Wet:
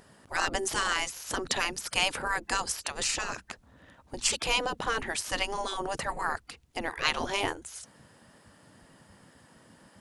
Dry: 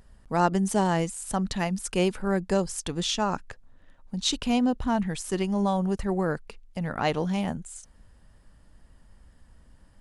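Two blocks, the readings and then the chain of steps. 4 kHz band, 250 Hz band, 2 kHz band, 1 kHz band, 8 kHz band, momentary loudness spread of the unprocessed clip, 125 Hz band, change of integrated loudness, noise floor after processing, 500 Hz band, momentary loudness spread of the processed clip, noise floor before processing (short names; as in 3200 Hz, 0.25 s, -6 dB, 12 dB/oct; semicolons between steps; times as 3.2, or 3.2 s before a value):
+2.5 dB, -16.0 dB, +6.0 dB, -2.5 dB, +2.5 dB, 10 LU, -16.0 dB, -3.0 dB, -60 dBFS, -7.5 dB, 13 LU, -57 dBFS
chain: spectral gate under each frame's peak -15 dB weak; gain +8.5 dB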